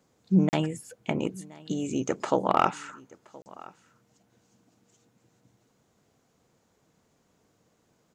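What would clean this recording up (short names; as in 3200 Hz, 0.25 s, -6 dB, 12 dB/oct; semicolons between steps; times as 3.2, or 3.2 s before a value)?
clip repair -8.5 dBFS; interpolate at 0.49/3.42, 39 ms; inverse comb 1.022 s -23 dB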